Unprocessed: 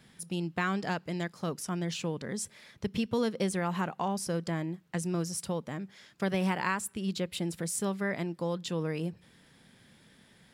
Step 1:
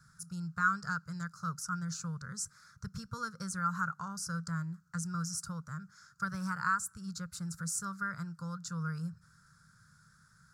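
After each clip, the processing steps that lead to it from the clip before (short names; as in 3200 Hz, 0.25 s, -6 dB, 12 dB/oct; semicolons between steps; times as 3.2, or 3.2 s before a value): EQ curve 160 Hz 0 dB, 300 Hz -30 dB, 500 Hz -20 dB, 750 Hz -25 dB, 1400 Hz +12 dB, 1900 Hz -16 dB, 3100 Hz -28 dB, 4400 Hz -5 dB, 6500 Hz +3 dB, 10000 Hz -5 dB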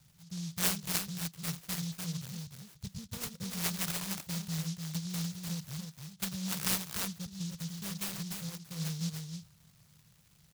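running mean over 11 samples; echo 0.297 s -4.5 dB; noise-modulated delay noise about 4900 Hz, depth 0.29 ms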